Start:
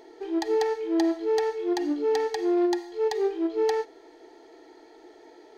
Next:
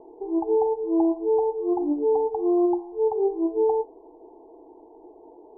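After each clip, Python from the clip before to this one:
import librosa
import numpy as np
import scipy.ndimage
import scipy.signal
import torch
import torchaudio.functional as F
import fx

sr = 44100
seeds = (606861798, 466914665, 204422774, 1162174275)

y = scipy.signal.sosfilt(scipy.signal.cheby1(10, 1.0, 1100.0, 'lowpass', fs=sr, output='sos'), x)
y = fx.low_shelf(y, sr, hz=78.0, db=8.0)
y = y * 10.0 ** (3.0 / 20.0)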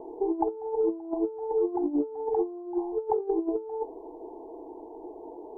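y = fx.over_compress(x, sr, threshold_db=-28.0, ratio=-0.5)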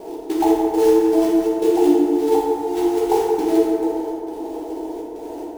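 y = fx.step_gate(x, sr, bpm=102, pattern='x.xx.xxxxx.x', floor_db=-24.0, edge_ms=4.5)
y = fx.quant_float(y, sr, bits=2)
y = fx.rev_fdn(y, sr, rt60_s=2.5, lf_ratio=1.25, hf_ratio=0.45, size_ms=31.0, drr_db=-7.0)
y = y * 10.0 ** (4.5 / 20.0)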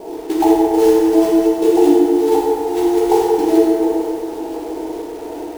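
y = fx.echo_crushed(x, sr, ms=100, feedback_pct=55, bits=6, wet_db=-9.5)
y = y * 10.0 ** (3.0 / 20.0)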